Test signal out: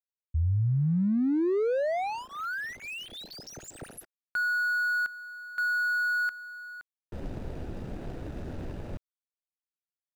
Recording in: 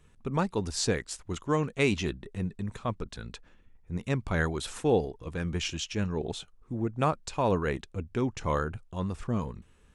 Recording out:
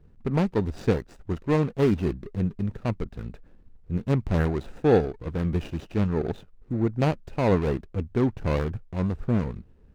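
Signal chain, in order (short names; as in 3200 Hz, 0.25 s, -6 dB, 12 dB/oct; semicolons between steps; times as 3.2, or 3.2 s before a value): median filter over 41 samples; high shelf 8000 Hz -9.5 dB; gain +6.5 dB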